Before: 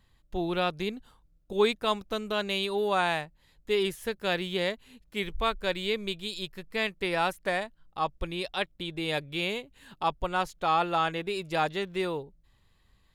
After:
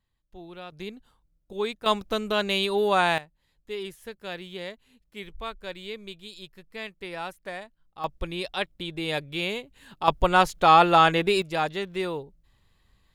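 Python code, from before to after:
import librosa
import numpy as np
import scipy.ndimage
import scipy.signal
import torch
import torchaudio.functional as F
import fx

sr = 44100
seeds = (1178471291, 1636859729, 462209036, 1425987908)

y = fx.gain(x, sr, db=fx.steps((0.0, -13.5), (0.72, -5.0), (1.86, 4.5), (3.18, -7.5), (8.04, 1.5), (10.08, 9.5), (11.42, 1.0)))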